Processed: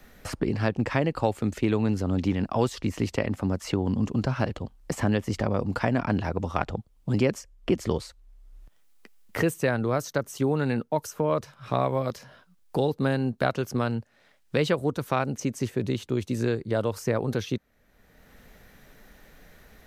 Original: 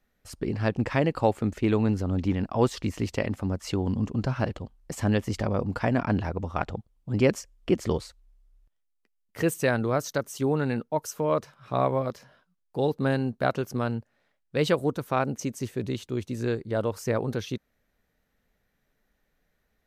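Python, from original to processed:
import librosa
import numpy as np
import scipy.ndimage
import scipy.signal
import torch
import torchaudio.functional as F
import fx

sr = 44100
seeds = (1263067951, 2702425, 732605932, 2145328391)

y = fx.peak_eq(x, sr, hz=5100.0, db=4.0, octaves=2.8, at=(13.38, 15.7))
y = fx.band_squash(y, sr, depth_pct=70)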